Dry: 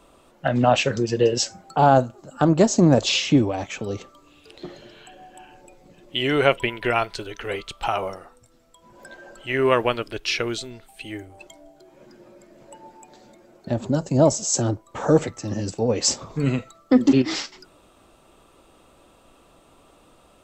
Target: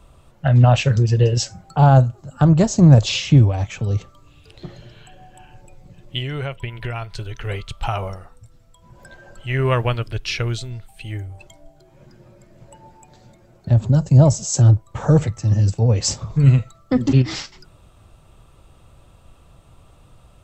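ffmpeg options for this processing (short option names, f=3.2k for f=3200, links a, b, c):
-filter_complex "[0:a]lowshelf=f=180:t=q:w=1.5:g=13.5,asettb=1/sr,asplit=3[a][b][c];[a]atrim=end=6.184[d];[b]atrim=start=6.18:end=7.45,asetpts=PTS-STARTPTS,afade=t=in:d=0.004:c=qsin,afade=t=out:st=1.266:d=0.004:c=qsin,acompressor=threshold=-23dB:ratio=6[e];[c]atrim=start=7.446[f];[d][e]acrossfade=d=0.004:c1=hsin:c2=qsin[g];[g][f]acrossfade=d=0.004:c1=qsin:c2=hsin,volume=-1dB"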